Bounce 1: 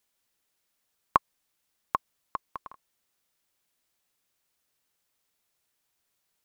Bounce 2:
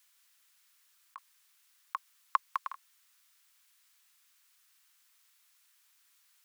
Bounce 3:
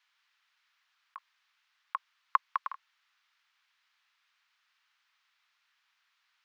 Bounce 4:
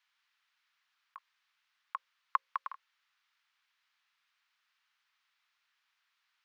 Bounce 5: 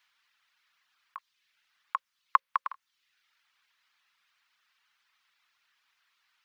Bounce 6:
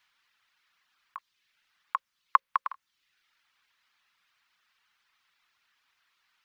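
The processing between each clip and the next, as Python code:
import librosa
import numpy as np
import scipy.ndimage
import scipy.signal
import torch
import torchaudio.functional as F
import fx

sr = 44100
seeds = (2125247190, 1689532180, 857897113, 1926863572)

y1 = scipy.signal.sosfilt(scipy.signal.butter(4, 1100.0, 'highpass', fs=sr, output='sos'), x)
y1 = fx.over_compress(y1, sr, threshold_db=-33.0, ratio=-0.5)
y1 = F.gain(torch.from_numpy(y1), 4.0).numpy()
y2 = scipy.signal.sosfilt(scipy.signal.butter(2, 690.0, 'highpass', fs=sr, output='sos'), y1)
y2 = fx.air_absorb(y2, sr, metres=250.0)
y2 = F.gain(torch.from_numpy(y2), 4.0).numpy()
y3 = fx.hum_notches(y2, sr, base_hz=60, count=9)
y3 = F.gain(torch.from_numpy(y3), -4.0).numpy()
y4 = fx.dereverb_blind(y3, sr, rt60_s=0.68)
y4 = F.gain(torch.from_numpy(y4), 7.5).numpy()
y5 = fx.low_shelf(y4, sr, hz=500.0, db=7.5)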